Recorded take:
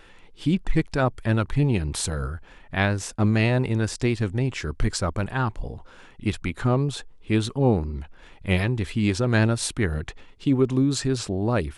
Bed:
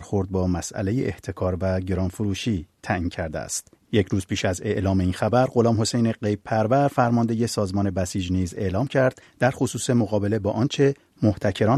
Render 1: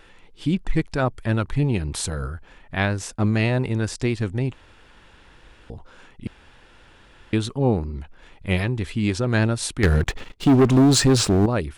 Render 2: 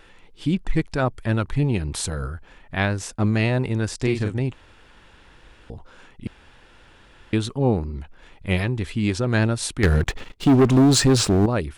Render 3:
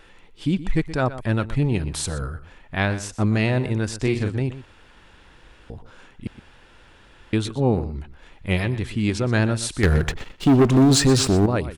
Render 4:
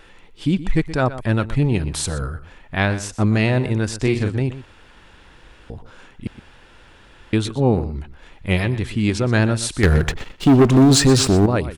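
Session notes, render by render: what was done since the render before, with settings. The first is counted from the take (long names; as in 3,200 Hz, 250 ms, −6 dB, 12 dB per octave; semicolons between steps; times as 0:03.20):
0:04.53–0:05.70: fill with room tone; 0:06.27–0:07.33: fill with room tone; 0:09.83–0:11.46: leveller curve on the samples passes 3
0:03.97–0:04.39: double-tracking delay 39 ms −5 dB
slap from a distant wall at 21 metres, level −14 dB
level +3 dB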